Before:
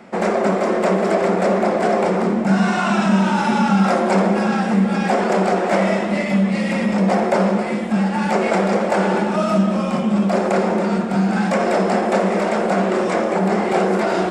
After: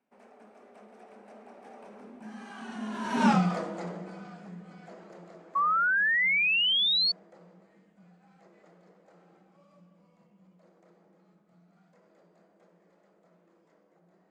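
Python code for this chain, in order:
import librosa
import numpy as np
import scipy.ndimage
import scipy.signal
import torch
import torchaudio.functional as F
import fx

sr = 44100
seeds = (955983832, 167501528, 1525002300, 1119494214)

y = fx.doppler_pass(x, sr, speed_mps=34, closest_m=2.3, pass_at_s=3.29)
y = fx.spec_paint(y, sr, seeds[0], shape='rise', start_s=5.55, length_s=1.57, low_hz=1100.0, high_hz=4500.0, level_db=-21.0)
y = y * 10.0 ** (-4.0 / 20.0)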